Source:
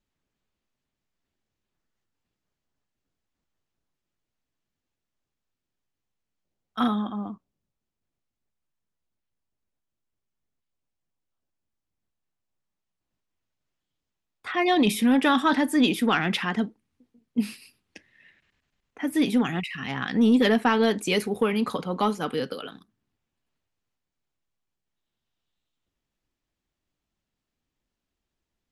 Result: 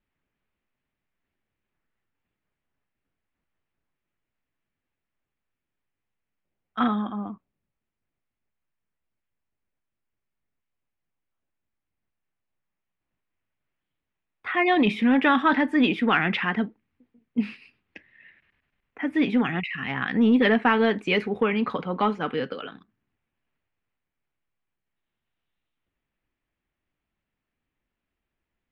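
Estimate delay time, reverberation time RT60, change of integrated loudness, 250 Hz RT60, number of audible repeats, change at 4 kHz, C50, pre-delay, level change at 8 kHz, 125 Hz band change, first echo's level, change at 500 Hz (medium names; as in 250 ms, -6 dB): no echo, no reverb, +1.0 dB, no reverb, no echo, -2.5 dB, no reverb, no reverb, under -20 dB, 0.0 dB, no echo, +0.5 dB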